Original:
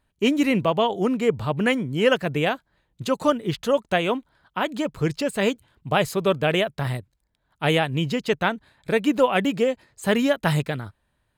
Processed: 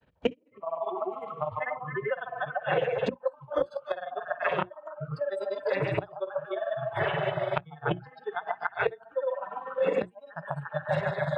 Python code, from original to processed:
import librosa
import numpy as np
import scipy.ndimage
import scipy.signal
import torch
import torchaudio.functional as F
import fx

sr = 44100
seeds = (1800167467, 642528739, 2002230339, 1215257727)

y = fx.reverse_delay_fb(x, sr, ms=144, feedback_pct=79, wet_db=-12)
y = fx.granulator(y, sr, seeds[0], grain_ms=64.0, per_s=20.0, spray_ms=100.0, spread_st=0)
y = scipy.signal.sosfilt(scipy.signal.butter(2, 3100.0, 'lowpass', fs=sr, output='sos'), y)
y = fx.low_shelf(y, sr, hz=150.0, db=6.5)
y = fx.echo_stepped(y, sr, ms=142, hz=770.0, octaves=0.7, feedback_pct=70, wet_db=-1.0)
y = fx.gate_flip(y, sr, shuts_db=-17.0, range_db=-24)
y = scipy.signal.sosfilt(scipy.signal.butter(2, 82.0, 'highpass', fs=sr, output='sos'), y)
y = fx.peak_eq(y, sr, hz=500.0, db=11.0, octaves=0.44)
y = fx.hum_notches(y, sr, base_hz=60, count=6)
y = fx.noise_reduce_blind(y, sr, reduce_db=26)
y = fx.band_squash(y, sr, depth_pct=100)
y = F.gain(torch.from_numpy(y), 4.0).numpy()